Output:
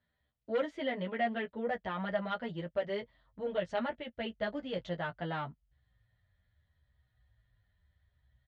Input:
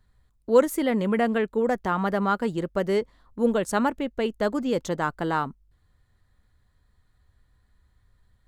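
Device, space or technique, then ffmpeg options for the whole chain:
barber-pole flanger into a guitar amplifier: -filter_complex "[0:a]asubboost=boost=7.5:cutoff=96,asplit=2[s0][s1];[s1]adelay=17,volume=0.237[s2];[s0][s2]amix=inputs=2:normalize=0,asplit=2[s3][s4];[s4]adelay=9.6,afreqshift=-0.76[s5];[s3][s5]amix=inputs=2:normalize=1,asoftclip=type=tanh:threshold=0.119,highpass=110,equalizer=f=380:t=q:w=4:g=-4,equalizer=f=620:t=q:w=4:g=9,equalizer=f=1100:t=q:w=4:g=-5,equalizer=f=1900:t=q:w=4:g=7,equalizer=f=3200:t=q:w=4:g=8,lowpass=f=4300:w=0.5412,lowpass=f=4300:w=1.3066,volume=0.422"

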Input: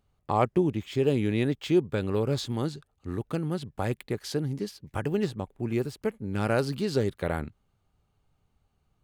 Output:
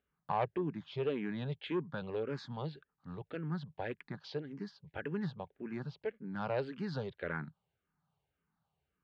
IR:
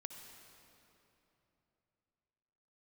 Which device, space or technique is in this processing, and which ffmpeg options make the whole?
barber-pole phaser into a guitar amplifier: -filter_complex "[0:a]asplit=2[s0][s1];[s1]afreqshift=-1.8[s2];[s0][s2]amix=inputs=2:normalize=1,asoftclip=type=tanh:threshold=0.126,highpass=99,equalizer=f=100:t=q:w=4:g=-9,equalizer=f=160:t=q:w=4:g=6,equalizer=f=230:t=q:w=4:g=-3,equalizer=f=330:t=q:w=4:g=-5,equalizer=f=950:t=q:w=4:g=4,equalizer=f=1600:t=q:w=4:g=7,lowpass=f=4200:w=0.5412,lowpass=f=4200:w=1.3066,volume=0.501"

